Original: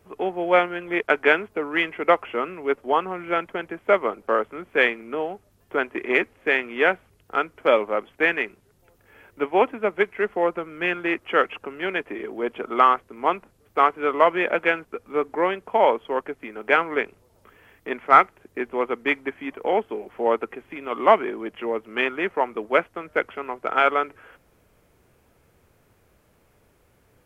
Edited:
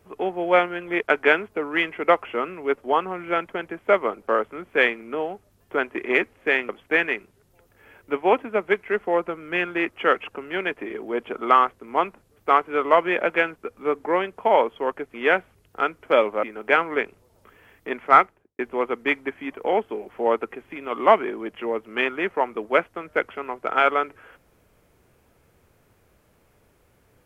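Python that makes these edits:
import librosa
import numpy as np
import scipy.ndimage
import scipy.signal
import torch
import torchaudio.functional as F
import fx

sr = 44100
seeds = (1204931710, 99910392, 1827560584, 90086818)

y = fx.studio_fade_out(x, sr, start_s=18.13, length_s=0.46)
y = fx.edit(y, sr, fx.move(start_s=6.69, length_s=1.29, to_s=16.43), tone=tone)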